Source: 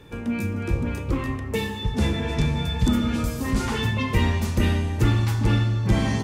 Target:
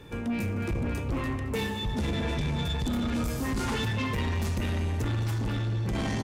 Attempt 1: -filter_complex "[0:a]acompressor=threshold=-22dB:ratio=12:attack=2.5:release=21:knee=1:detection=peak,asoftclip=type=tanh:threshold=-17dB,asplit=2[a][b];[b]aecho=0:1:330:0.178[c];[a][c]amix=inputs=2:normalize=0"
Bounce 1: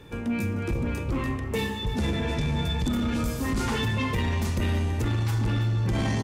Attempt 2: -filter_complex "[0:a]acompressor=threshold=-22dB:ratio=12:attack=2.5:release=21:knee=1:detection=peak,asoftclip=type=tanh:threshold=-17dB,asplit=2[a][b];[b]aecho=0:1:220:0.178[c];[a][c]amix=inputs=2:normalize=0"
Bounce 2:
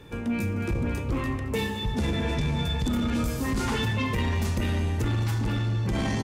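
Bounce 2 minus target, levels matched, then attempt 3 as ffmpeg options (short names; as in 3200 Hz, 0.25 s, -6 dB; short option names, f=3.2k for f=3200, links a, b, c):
soft clip: distortion -11 dB
-filter_complex "[0:a]acompressor=threshold=-22dB:ratio=12:attack=2.5:release=21:knee=1:detection=peak,asoftclip=type=tanh:threshold=-24.5dB,asplit=2[a][b];[b]aecho=0:1:220:0.178[c];[a][c]amix=inputs=2:normalize=0"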